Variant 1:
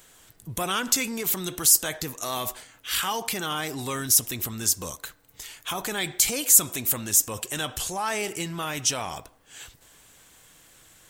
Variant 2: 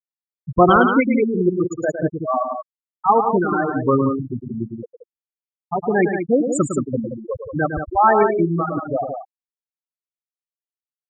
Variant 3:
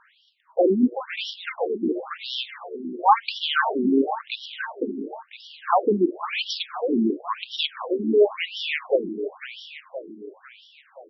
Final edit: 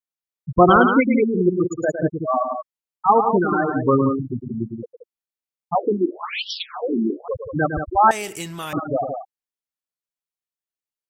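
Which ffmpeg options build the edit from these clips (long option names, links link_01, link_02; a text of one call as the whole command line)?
ffmpeg -i take0.wav -i take1.wav -i take2.wav -filter_complex "[1:a]asplit=3[link_01][link_02][link_03];[link_01]atrim=end=5.752[link_04];[2:a]atrim=start=5.748:end=7.282[link_05];[link_02]atrim=start=7.278:end=8.112[link_06];[0:a]atrim=start=8.108:end=8.732[link_07];[link_03]atrim=start=8.728[link_08];[link_04][link_05]acrossfade=duration=0.004:curve1=hsin:curve2=hsin[link_09];[link_09][link_06]acrossfade=duration=0.004:curve1=hsin:curve2=hsin[link_10];[link_10][link_07]acrossfade=duration=0.004:curve1=hsin:curve2=hsin[link_11];[link_11][link_08]acrossfade=duration=0.004:curve1=hsin:curve2=hsin" out.wav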